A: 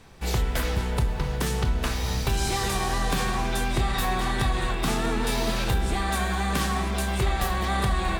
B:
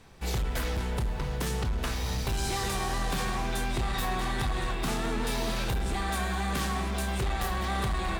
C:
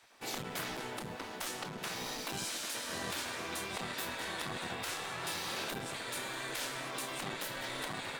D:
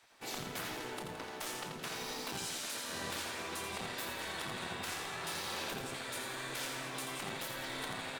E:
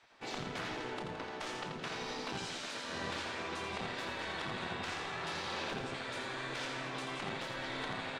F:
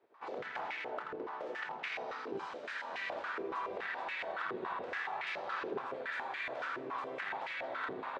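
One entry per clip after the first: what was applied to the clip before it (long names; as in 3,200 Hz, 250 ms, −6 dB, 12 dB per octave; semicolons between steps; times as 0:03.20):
hard clipping −21.5 dBFS, distortion −15 dB; level −3.5 dB
gate on every frequency bin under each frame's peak −15 dB weak; level −2.5 dB
repeating echo 84 ms, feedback 47%, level −6 dB; level −2.5 dB
high-frequency loss of the air 120 metres; level +2.5 dB
band-pass on a step sequencer 7.1 Hz 400–2,200 Hz; level +9.5 dB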